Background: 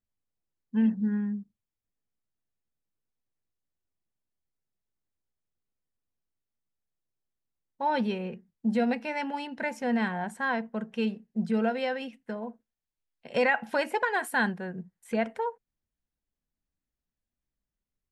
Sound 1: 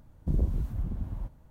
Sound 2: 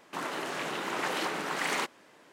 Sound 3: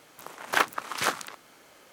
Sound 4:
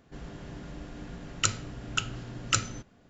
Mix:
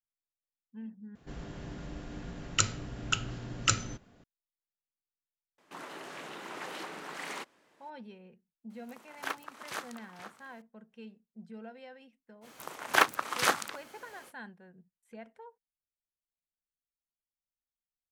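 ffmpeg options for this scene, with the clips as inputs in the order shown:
-filter_complex "[3:a]asplit=2[a][b];[0:a]volume=-19.5dB[c];[a]asplit=2[d][e];[e]adelay=478.1,volume=-7dB,highshelf=f=4k:g=-10.8[f];[d][f]amix=inputs=2:normalize=0[g];[c]asplit=2[h][i];[h]atrim=end=1.154[j];[4:a]atrim=end=3.09,asetpts=PTS-STARTPTS,volume=-0.5dB[k];[i]atrim=start=4.236[l];[2:a]atrim=end=2.32,asetpts=PTS-STARTPTS,volume=-9.5dB,afade=t=in:d=0.004:c=hsin,afade=t=out:st=2.316:d=0.004:c=hsin,adelay=5580[m];[g]atrim=end=1.92,asetpts=PTS-STARTPTS,volume=-13dB,afade=t=in:d=0.004:c=hsin,afade=t=out:st=1.916:d=0.004:c=hsin,adelay=8700[n];[b]atrim=end=1.92,asetpts=PTS-STARTPTS,afade=t=in:d=0.05,afade=t=out:st=1.87:d=0.05,adelay=12410[o];[j][k]acrossfade=d=0.004:c1=hsin:c2=hsin[p];[p][l]acrossfade=d=0.004:c1=hsin:c2=hsin[q];[q][m][n][o]amix=inputs=4:normalize=0"

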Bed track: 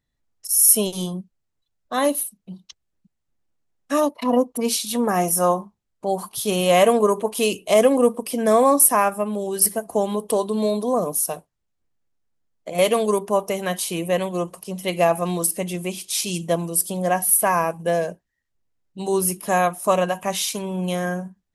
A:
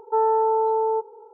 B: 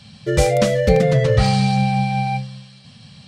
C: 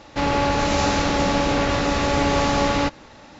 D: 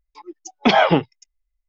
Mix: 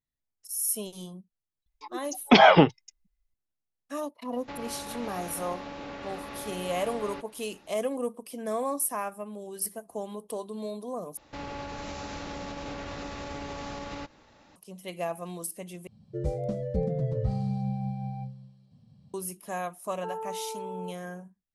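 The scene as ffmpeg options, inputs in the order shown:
-filter_complex "[3:a]asplit=2[a][b];[0:a]volume=-14.5dB[c];[a]acrossover=split=160|4500[d][e][f];[d]acompressor=threshold=-42dB:ratio=4[g];[e]acompressor=threshold=-24dB:ratio=4[h];[f]acompressor=threshold=-55dB:ratio=4[i];[g][h][i]amix=inputs=3:normalize=0[j];[b]alimiter=limit=-16dB:level=0:latency=1:release=92[k];[2:a]firequalizer=gain_entry='entry(300,0);entry(1500,-19);entry(2500,-23);entry(4500,-19)':delay=0.05:min_phase=1[l];[c]asplit=3[m][n][o];[m]atrim=end=11.174[p];[k]atrim=end=3.39,asetpts=PTS-STARTPTS,volume=-13dB[q];[n]atrim=start=14.556:end=15.874[r];[l]atrim=end=3.27,asetpts=PTS-STARTPTS,volume=-12.5dB[s];[o]atrim=start=19.136[t];[4:a]atrim=end=1.68,asetpts=PTS-STARTPTS,volume=-1dB,afade=t=in:d=0.004:c=hsin,afade=t=out:st=1.676:d=0.004:c=hsin,adelay=1660[u];[j]atrim=end=3.39,asetpts=PTS-STARTPTS,volume=-13.5dB,afade=t=in:d=0.004:c=hsin,afade=t=out:st=3.386:d=0.004:c=hsin,adelay=4320[v];[1:a]atrim=end=1.33,asetpts=PTS-STARTPTS,volume=-16.5dB,afade=t=in:d=0.004:c=hsin,afade=t=out:st=1.326:d=0.004:c=hsin,adelay=19910[w];[p][q]acrossfade=d=0.004:c1=hsin:c2=hsin[x];[x][r]acrossfade=d=0.004:c1=hsin:c2=hsin[y];[y][s]acrossfade=d=0.004:c1=hsin:c2=hsin[z];[z][t]acrossfade=d=0.004:c1=hsin:c2=hsin[aa];[aa][u][v][w]amix=inputs=4:normalize=0"

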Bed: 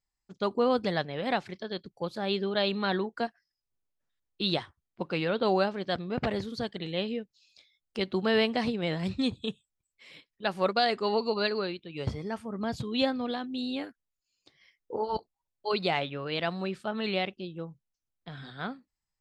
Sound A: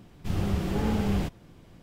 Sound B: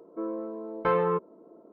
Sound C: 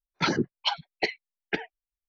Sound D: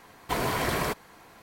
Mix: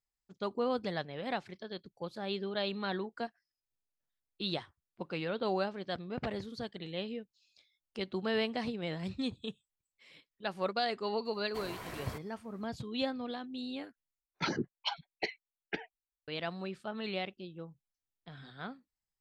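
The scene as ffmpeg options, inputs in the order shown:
-filter_complex "[0:a]volume=-7dB,asplit=2[a][b];[a]atrim=end=14.204[c];[3:a]atrim=end=2.08,asetpts=PTS-STARTPTS,volume=-8.5dB[d];[b]atrim=start=16.276[e];[4:a]atrim=end=1.42,asetpts=PTS-STARTPTS,volume=-16.5dB,afade=t=in:d=0.004:c=hsin,afade=t=out:st=1.416:d=0.004:c=hsin,adelay=11250[f];[c][d]acrossfade=d=0.004:c1=hsin:c2=hsin[g];[g][e]acrossfade=d=0.004:c1=hsin:c2=hsin[h];[h][f]amix=inputs=2:normalize=0"

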